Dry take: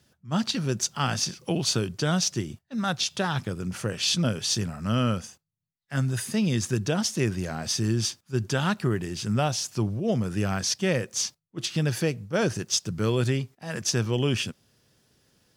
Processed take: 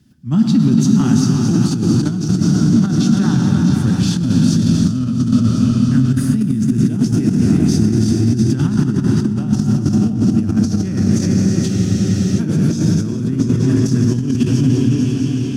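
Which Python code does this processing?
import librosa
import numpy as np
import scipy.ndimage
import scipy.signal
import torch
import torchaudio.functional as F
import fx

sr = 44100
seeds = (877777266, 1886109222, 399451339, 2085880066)

p1 = fx.reverse_delay_fb(x, sr, ms=336, feedback_pct=62, wet_db=-7)
p2 = fx.echo_opening(p1, sr, ms=174, hz=200, octaves=2, feedback_pct=70, wet_db=-3)
p3 = fx.rev_gated(p2, sr, seeds[0], gate_ms=480, shape='flat', drr_db=2.0)
p4 = fx.level_steps(p3, sr, step_db=21)
p5 = p3 + (p4 * librosa.db_to_amplitude(-1.0))
p6 = fx.dynamic_eq(p5, sr, hz=3000.0, q=0.97, threshold_db=-37.0, ratio=4.0, max_db=-6)
p7 = fx.over_compress(p6, sr, threshold_db=-23.0, ratio=-1.0)
p8 = fx.low_shelf_res(p7, sr, hz=370.0, db=10.0, q=3.0)
p9 = fx.spec_freeze(p8, sr, seeds[1], at_s=11.7, hold_s=0.68)
y = p9 * librosa.db_to_amplitude(-3.0)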